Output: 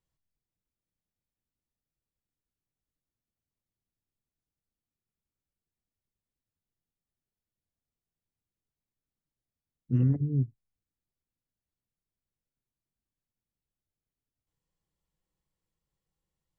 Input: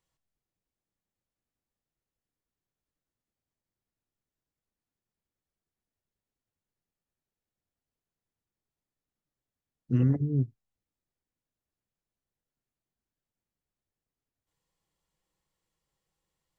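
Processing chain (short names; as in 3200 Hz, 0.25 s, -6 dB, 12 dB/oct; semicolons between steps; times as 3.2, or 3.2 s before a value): low shelf 320 Hz +9.5 dB; gain -8 dB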